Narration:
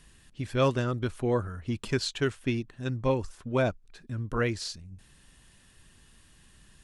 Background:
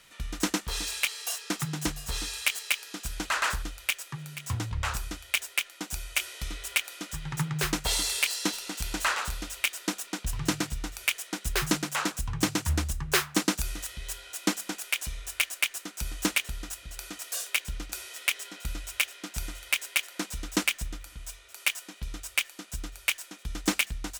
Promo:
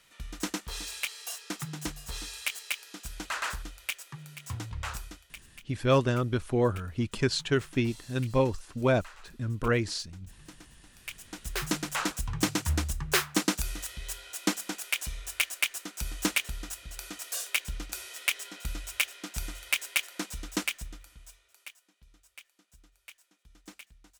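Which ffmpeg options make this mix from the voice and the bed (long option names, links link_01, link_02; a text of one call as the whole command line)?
ffmpeg -i stem1.wav -i stem2.wav -filter_complex "[0:a]adelay=5300,volume=1.5dB[link_01];[1:a]volume=16.5dB,afade=type=out:start_time=4.97:duration=0.41:silence=0.133352,afade=type=in:start_time=10.91:duration=1.14:silence=0.0794328,afade=type=out:start_time=19.99:duration=1.77:silence=0.0794328[link_02];[link_01][link_02]amix=inputs=2:normalize=0" out.wav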